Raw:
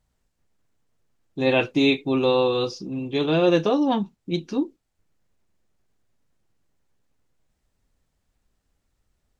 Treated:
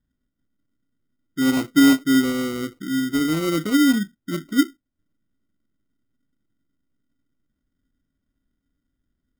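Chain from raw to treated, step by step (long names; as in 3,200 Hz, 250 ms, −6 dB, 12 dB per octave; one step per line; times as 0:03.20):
formant resonators in series i
decimation without filtering 26×
level +8 dB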